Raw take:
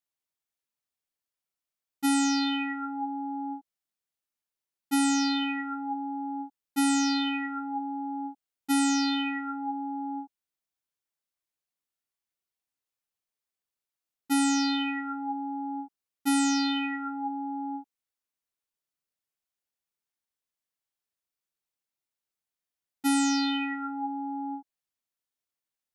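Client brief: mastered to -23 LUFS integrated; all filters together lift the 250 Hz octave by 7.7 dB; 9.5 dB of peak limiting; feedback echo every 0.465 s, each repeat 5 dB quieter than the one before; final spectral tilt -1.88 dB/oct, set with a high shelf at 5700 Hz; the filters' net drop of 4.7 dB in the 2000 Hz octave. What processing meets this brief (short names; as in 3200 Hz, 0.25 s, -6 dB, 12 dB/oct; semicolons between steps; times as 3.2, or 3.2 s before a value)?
bell 250 Hz +8.5 dB; bell 2000 Hz -7 dB; high shelf 5700 Hz +9 dB; limiter -22.5 dBFS; feedback echo 0.465 s, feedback 56%, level -5 dB; gain +3 dB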